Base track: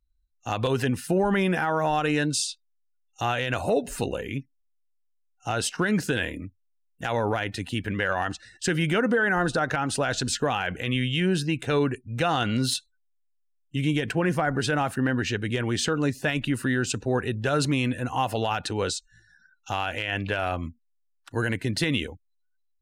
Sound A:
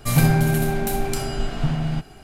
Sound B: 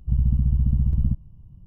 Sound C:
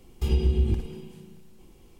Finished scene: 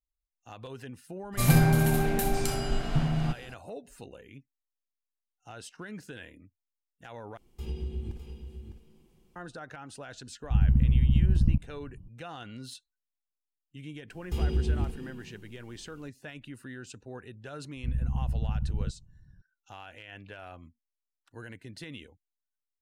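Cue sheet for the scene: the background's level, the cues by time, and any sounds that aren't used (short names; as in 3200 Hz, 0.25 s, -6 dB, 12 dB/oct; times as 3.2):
base track -18 dB
1.32 add A -4 dB, fades 0.02 s
7.37 replace with C -12.5 dB + echo 0.605 s -8.5 dB
10.43 add B -2 dB + bell 310 Hz +6 dB
14.1 add C -4.5 dB
17.76 add B -9.5 dB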